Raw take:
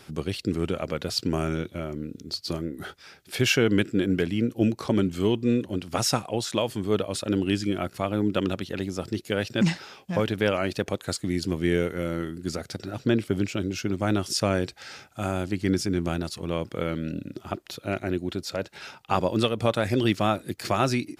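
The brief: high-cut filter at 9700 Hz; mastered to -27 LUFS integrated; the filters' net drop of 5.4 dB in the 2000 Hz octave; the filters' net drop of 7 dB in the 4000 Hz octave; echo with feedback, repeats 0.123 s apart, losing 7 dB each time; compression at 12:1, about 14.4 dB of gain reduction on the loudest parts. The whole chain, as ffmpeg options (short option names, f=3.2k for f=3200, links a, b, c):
-af "lowpass=9.7k,equalizer=f=2k:t=o:g=-5,equalizer=f=4k:t=o:g=-8,acompressor=threshold=-32dB:ratio=12,aecho=1:1:123|246|369|492|615:0.447|0.201|0.0905|0.0407|0.0183,volume=10.5dB"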